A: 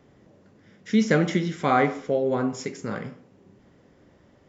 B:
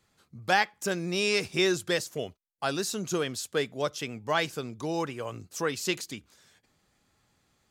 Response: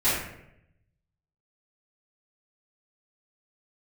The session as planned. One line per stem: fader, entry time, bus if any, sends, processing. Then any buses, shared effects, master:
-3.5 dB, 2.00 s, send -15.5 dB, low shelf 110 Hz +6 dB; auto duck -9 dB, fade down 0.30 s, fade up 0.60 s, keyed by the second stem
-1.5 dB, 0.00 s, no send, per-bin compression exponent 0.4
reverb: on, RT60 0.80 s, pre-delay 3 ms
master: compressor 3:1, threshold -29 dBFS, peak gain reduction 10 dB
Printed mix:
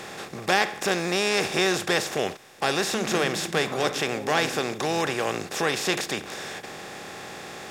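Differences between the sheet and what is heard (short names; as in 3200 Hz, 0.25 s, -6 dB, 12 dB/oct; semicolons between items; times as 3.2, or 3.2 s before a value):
stem A -3.5 dB -> -14.0 dB; master: missing compressor 3:1, threshold -29 dBFS, peak gain reduction 10 dB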